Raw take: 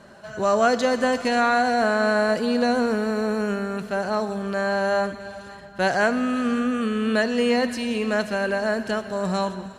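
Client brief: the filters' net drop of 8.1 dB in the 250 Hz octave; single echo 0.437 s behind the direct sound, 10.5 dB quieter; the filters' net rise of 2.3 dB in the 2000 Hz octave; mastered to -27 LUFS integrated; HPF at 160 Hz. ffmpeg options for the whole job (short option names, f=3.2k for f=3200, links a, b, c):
-af "highpass=160,equalizer=f=250:t=o:g=-8,equalizer=f=2k:t=o:g=3.5,aecho=1:1:437:0.299,volume=-3.5dB"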